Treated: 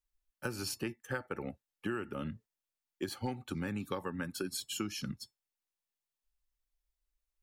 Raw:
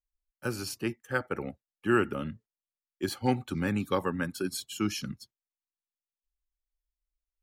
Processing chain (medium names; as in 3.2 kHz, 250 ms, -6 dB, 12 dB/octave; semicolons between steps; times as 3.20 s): compression 12:1, threshold -35 dBFS, peak gain reduction 16 dB; feedback comb 880 Hz, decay 0.16 s, harmonics all, mix 50%; trim +7.5 dB